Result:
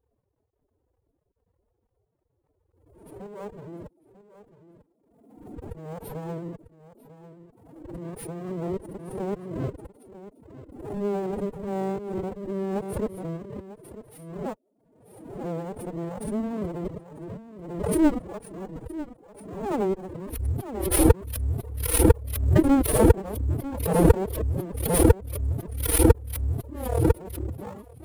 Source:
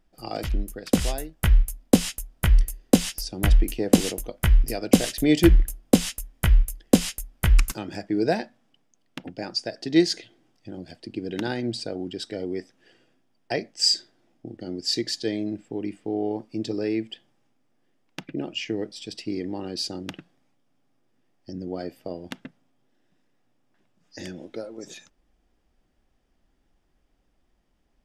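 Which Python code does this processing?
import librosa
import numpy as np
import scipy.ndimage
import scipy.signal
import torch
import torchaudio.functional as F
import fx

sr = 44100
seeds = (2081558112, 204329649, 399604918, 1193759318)

p1 = x[::-1].copy()
p2 = fx.brickwall_bandstop(p1, sr, low_hz=810.0, high_hz=8900.0)
p3 = fx.high_shelf(p2, sr, hz=4700.0, db=-7.0)
p4 = fx.sample_hold(p3, sr, seeds[0], rate_hz=7900.0, jitter_pct=20)
p5 = p3 + F.gain(torch.from_numpy(p4), -9.0).numpy()
p6 = fx.graphic_eq(p5, sr, hz=(125, 250, 1000), db=(-12, 11, -8))
p7 = p6 + fx.echo_single(p6, sr, ms=946, db=-14.5, dry=0)
p8 = np.maximum(p7, 0.0)
p9 = fx.highpass(p8, sr, hz=64.0, slope=6)
p10 = fx.pitch_keep_formants(p9, sr, semitones=10.5)
p11 = fx.pre_swell(p10, sr, db_per_s=57.0)
y = F.gain(torch.from_numpy(p11), -3.0).numpy()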